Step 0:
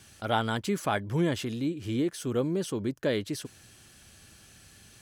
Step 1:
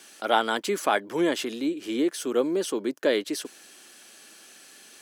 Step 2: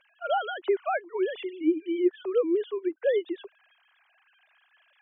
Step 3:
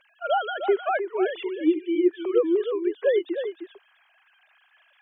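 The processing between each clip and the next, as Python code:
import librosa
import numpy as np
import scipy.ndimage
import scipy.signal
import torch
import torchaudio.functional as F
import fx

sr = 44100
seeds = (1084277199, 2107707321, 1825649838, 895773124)

y1 = scipy.signal.sosfilt(scipy.signal.butter(4, 280.0, 'highpass', fs=sr, output='sos'), x)
y1 = y1 * librosa.db_to_amplitude(5.5)
y2 = fx.sine_speech(y1, sr)
y2 = y2 * librosa.db_to_amplitude(-1.5)
y3 = y2 + 10.0 ** (-8.5 / 20.0) * np.pad(y2, (int(309 * sr / 1000.0), 0))[:len(y2)]
y3 = y3 * librosa.db_to_amplitude(3.0)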